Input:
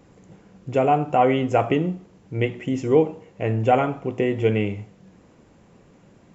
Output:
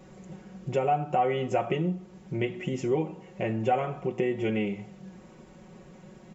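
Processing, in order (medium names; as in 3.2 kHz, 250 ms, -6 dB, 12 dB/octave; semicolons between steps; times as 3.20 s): comb 5.4 ms, depth 91%; compression 2:1, threshold -31 dBFS, peak gain reduction 12.5 dB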